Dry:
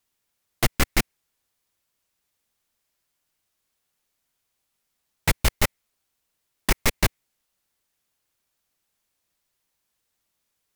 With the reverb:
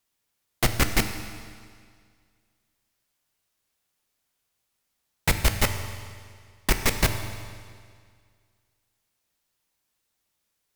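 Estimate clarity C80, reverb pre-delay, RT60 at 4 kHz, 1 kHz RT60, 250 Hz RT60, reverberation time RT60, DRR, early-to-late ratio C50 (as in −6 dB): 9.0 dB, 9 ms, 1.9 s, 2.0 s, 2.0 s, 2.0 s, 6.5 dB, 8.5 dB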